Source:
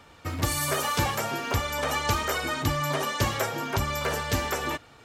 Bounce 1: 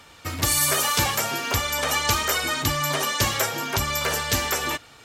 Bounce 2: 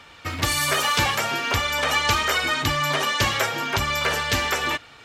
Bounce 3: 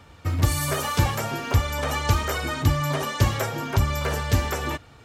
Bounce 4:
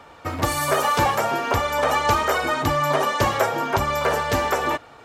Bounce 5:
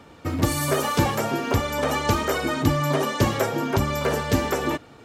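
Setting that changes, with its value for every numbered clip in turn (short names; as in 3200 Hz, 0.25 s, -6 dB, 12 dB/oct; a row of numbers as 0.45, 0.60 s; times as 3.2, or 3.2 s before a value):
bell, frequency: 16000, 2800, 70, 770, 270 Hz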